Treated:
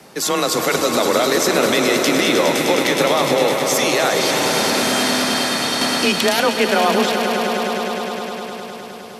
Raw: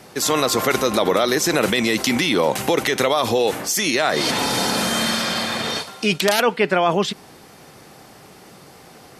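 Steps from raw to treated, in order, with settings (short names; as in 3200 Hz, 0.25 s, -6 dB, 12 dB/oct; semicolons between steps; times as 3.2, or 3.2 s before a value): frequency shift +27 Hz; swelling echo 0.103 s, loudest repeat 5, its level -10 dB; 5.81–6.4 three-band squash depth 70%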